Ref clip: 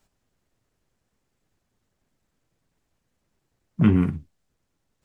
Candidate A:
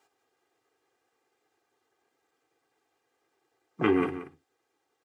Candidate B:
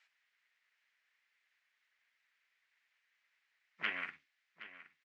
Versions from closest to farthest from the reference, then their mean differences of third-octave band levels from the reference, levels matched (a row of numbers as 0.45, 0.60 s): A, B; 8.5, 12.5 dB